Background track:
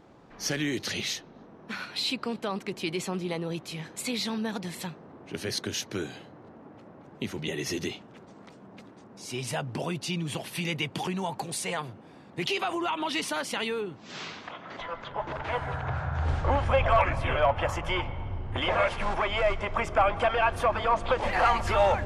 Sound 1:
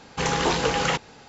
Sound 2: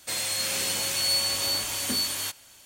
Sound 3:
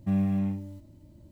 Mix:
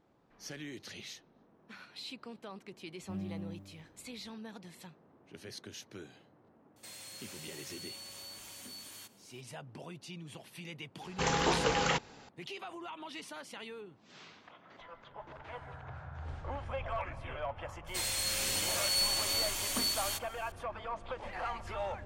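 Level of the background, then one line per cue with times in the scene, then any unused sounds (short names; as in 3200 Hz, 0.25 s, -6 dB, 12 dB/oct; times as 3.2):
background track -15 dB
3.02 add 3 -15 dB
6.76 add 2 -14.5 dB + compressor 2.5:1, threshold -33 dBFS
11.01 add 1 -6.5 dB
17.87 add 2 -5.5 dB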